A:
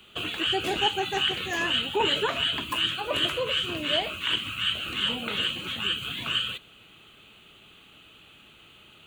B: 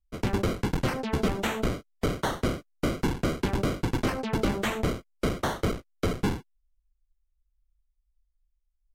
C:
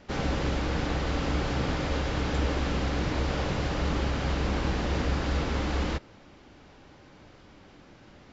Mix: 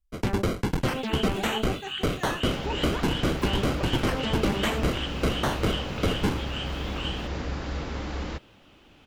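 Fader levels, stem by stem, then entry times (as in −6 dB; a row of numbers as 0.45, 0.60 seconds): −8.5, +1.0, −4.0 decibels; 0.70, 0.00, 2.40 seconds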